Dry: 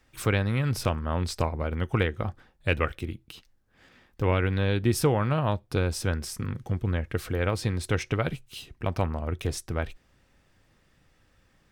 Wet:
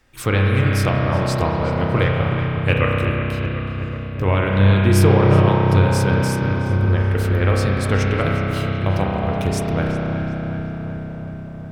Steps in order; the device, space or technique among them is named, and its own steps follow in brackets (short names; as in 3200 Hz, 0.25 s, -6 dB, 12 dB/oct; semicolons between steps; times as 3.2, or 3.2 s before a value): dub delay into a spring reverb (darkening echo 0.372 s, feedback 74%, low-pass 2600 Hz, level -9 dB; spring tank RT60 3.8 s, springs 31 ms, chirp 60 ms, DRR -2.5 dB); gain +4.5 dB